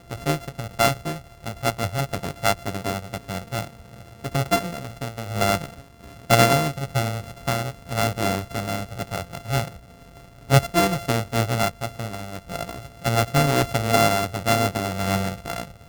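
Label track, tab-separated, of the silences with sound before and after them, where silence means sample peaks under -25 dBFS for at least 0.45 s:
3.640000	4.250000	silence
5.650000	6.300000	silence
9.680000	10.500000	silence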